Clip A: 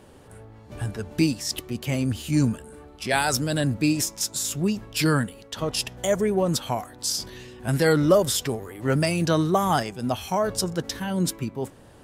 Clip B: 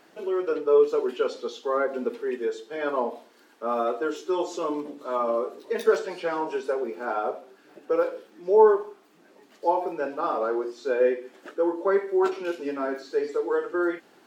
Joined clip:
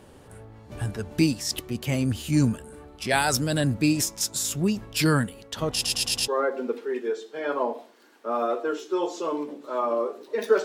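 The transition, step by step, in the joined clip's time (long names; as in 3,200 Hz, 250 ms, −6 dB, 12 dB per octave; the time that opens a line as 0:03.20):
clip A
0:05.73: stutter in place 0.11 s, 5 plays
0:06.28: continue with clip B from 0:01.65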